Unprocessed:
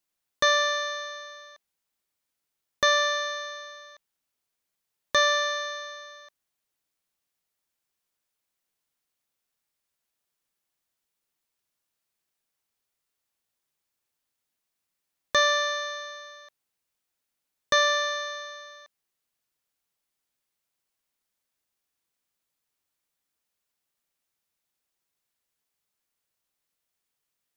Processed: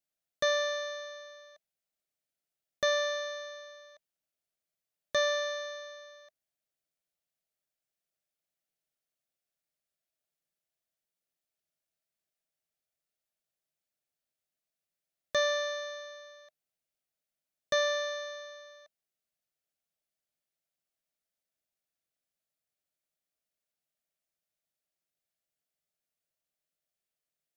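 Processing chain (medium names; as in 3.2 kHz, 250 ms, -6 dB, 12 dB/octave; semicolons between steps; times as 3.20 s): graphic EQ with 31 bands 160 Hz +6 dB, 630 Hz +10 dB, 1 kHz -10 dB; trim -8.5 dB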